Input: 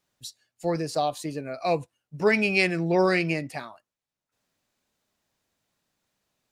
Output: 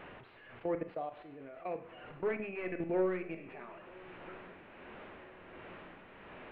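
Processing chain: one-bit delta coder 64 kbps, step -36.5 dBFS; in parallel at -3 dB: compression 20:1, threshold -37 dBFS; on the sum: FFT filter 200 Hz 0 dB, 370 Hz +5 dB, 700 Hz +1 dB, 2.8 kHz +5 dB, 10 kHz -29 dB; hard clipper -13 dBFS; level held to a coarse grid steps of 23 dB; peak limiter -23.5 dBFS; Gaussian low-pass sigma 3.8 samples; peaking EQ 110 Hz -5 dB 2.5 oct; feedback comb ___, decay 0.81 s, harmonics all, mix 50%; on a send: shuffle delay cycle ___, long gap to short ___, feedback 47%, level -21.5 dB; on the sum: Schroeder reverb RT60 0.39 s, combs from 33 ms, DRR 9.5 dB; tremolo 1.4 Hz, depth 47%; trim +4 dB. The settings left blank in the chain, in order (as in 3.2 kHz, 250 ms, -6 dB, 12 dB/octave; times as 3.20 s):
92 Hz, 1287 ms, 3:1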